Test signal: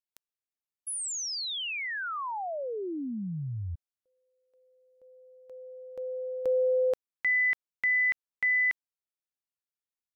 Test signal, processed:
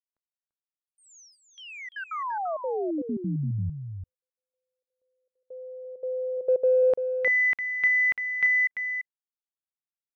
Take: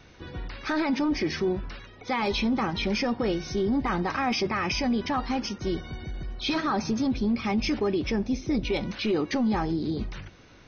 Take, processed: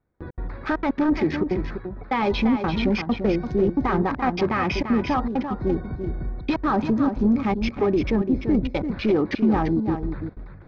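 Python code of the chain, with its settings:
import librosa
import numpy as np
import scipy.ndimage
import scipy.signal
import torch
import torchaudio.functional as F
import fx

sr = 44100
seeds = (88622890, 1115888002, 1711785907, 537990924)

y = fx.wiener(x, sr, points=15)
y = fx.gate_hold(y, sr, open_db=-43.0, close_db=-52.0, hold_ms=13.0, range_db=-27, attack_ms=0.22, release_ms=58.0)
y = fx.high_shelf(y, sr, hz=5200.0, db=-7.0)
y = fx.step_gate(y, sr, bpm=199, pattern='xxxx.xxxxx.x.xx', floor_db=-60.0, edge_ms=4.5)
y = fx.air_absorb(y, sr, metres=140.0)
y = y + 10.0 ** (-8.0 / 20.0) * np.pad(y, (int(341 * sr / 1000.0), 0))[:len(y)]
y = y * librosa.db_to_amplitude(6.0)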